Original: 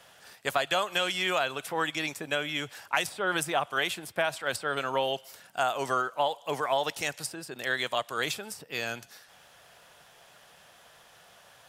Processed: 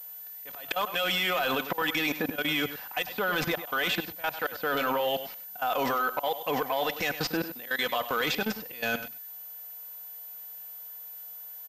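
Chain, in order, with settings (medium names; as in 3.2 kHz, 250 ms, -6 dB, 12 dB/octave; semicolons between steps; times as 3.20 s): median filter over 5 samples; gate -48 dBFS, range -14 dB; comb 4 ms, depth 52%; in parallel at +2 dB: compression 8:1, threshold -40 dBFS, peak gain reduction 19 dB; on the sum: slow attack 271 ms; level held to a coarse grid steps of 19 dB; added noise violet -62 dBFS; sine folder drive 5 dB, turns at -22.5 dBFS; echo from a far wall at 17 m, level -12 dB; class-D stage that switches slowly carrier 14 kHz; trim +2.5 dB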